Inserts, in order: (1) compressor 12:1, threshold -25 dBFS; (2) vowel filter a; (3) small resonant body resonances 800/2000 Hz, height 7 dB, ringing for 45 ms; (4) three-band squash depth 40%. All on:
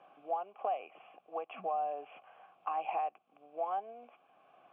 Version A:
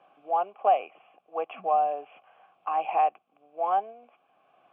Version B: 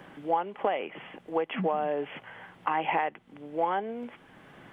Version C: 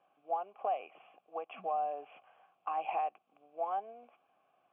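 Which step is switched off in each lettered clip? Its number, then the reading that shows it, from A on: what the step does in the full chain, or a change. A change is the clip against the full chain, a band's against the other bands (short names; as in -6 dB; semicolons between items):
1, mean gain reduction 5.5 dB; 2, 250 Hz band +12.0 dB; 4, 250 Hz band -2.0 dB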